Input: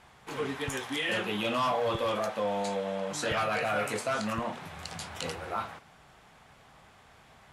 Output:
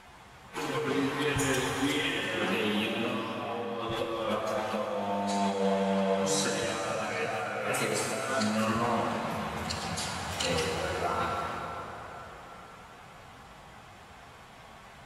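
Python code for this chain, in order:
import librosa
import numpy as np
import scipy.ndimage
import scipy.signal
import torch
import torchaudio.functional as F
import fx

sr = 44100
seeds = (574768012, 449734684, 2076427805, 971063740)

y = fx.over_compress(x, sr, threshold_db=-33.0, ratio=-0.5)
y = fx.stretch_vocoder_free(y, sr, factor=2.0)
y = fx.rev_plate(y, sr, seeds[0], rt60_s=4.6, hf_ratio=0.65, predelay_ms=0, drr_db=1.5)
y = F.gain(torch.from_numpy(y), 2.5).numpy()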